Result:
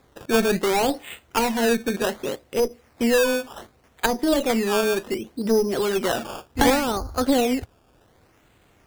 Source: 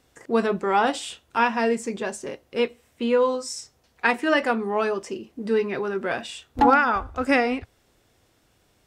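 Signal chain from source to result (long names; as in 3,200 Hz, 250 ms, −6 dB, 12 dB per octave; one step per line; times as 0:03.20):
asymmetric clip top −25.5 dBFS
treble cut that deepens with the level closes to 680 Hz, closed at −22 dBFS
sample-and-hold swept by an LFO 15×, swing 100% 0.67 Hz
level +5.5 dB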